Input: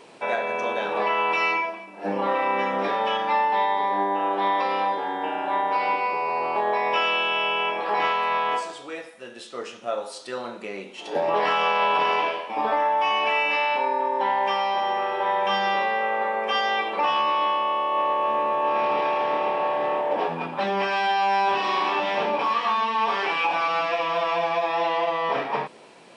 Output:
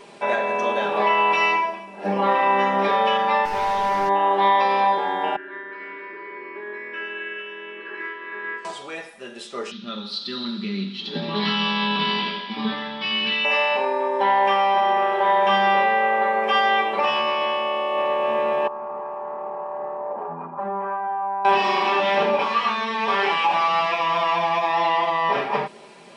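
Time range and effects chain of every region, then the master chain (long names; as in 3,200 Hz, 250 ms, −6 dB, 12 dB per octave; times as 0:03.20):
0:03.45–0:04.09: linear delta modulator 32 kbit/s, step −36.5 dBFS + hard clipping −23.5 dBFS
0:05.36–0:08.65: pair of resonant band-passes 760 Hz, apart 2.3 octaves + single-tap delay 442 ms −5 dB
0:09.71–0:13.45: drawn EQ curve 120 Hz 0 dB, 200 Hz +12 dB, 670 Hz −20 dB, 1,300 Hz −5 dB, 2,600 Hz −4 dB, 4,000 Hz +14 dB, 7,400 Hz −20 dB + feedback echo with a high-pass in the loop 83 ms, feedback 82%, high-pass 390 Hz, level −13.5 dB
0:18.67–0:21.45: transistor ladder low-pass 1,300 Hz, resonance 50% + downward compressor, threshold −28 dBFS
whole clip: low-shelf EQ 65 Hz +6.5 dB; comb filter 5 ms, depth 59%; level +2 dB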